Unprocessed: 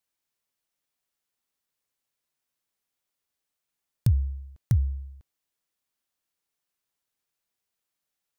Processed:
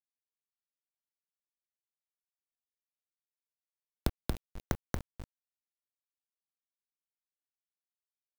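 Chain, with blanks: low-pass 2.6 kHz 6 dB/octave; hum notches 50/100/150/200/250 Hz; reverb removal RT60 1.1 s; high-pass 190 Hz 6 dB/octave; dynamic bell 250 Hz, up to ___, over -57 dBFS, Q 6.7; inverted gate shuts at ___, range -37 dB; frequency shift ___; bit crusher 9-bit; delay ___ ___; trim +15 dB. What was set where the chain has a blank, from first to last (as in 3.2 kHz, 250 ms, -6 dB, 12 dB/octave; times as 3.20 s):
-6 dB, -30 dBFS, -93 Hz, 231 ms, -3 dB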